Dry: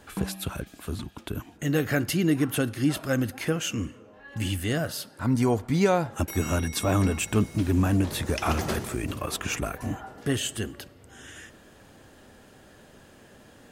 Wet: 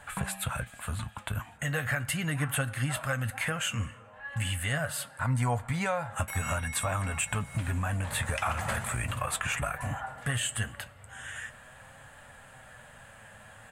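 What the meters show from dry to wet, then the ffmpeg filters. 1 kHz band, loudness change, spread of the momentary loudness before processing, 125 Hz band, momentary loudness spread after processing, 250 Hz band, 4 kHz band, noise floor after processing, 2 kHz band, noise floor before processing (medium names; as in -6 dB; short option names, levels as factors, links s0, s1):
-1.0 dB, -4.5 dB, 13 LU, -3.0 dB, 20 LU, -12.0 dB, -3.0 dB, -52 dBFS, +1.5 dB, -53 dBFS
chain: -af "firequalizer=gain_entry='entry(130,0);entry(350,-21);entry(530,-2);entry(820,3);entry(1700,6);entry(5500,-11);entry(8000,6);entry(13000,-5)':delay=0.05:min_phase=1,acompressor=threshold=0.0398:ratio=6,flanger=delay=6.8:depth=2.8:regen=64:speed=0.41:shape=triangular,volume=1.88"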